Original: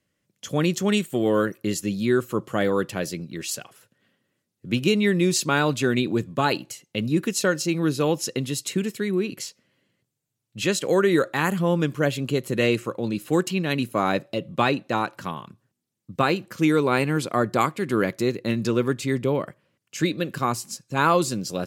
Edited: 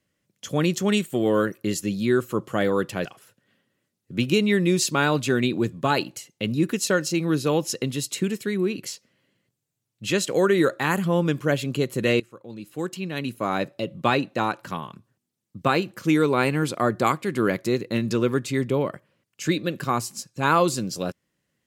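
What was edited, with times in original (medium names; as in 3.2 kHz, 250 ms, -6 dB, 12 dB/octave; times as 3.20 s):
3.05–3.59 s: delete
12.74–14.61 s: fade in, from -20.5 dB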